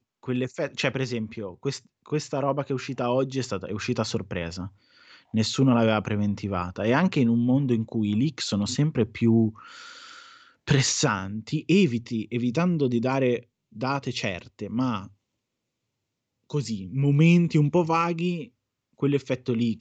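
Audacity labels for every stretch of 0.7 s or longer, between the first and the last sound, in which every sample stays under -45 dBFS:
15.070000	16.500000	silence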